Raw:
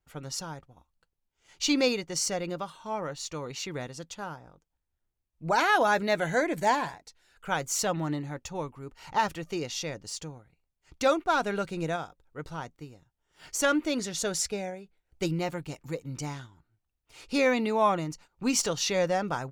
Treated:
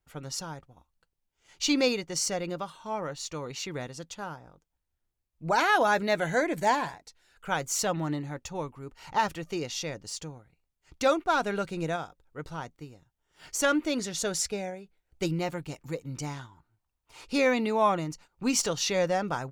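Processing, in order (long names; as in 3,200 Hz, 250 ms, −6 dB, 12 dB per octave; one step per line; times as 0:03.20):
0:16.37–0:17.25: parametric band 970 Hz +8.5 dB 0.65 octaves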